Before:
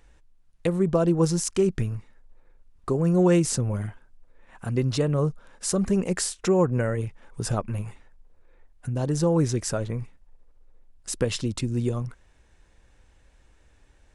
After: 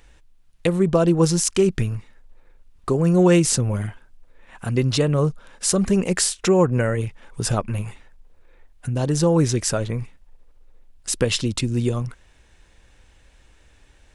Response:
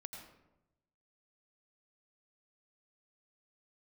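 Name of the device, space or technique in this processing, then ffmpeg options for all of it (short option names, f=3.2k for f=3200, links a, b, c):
presence and air boost: -af "equalizer=f=3.1k:t=o:w=1.5:g=5,highshelf=f=9k:g=5,volume=4dB"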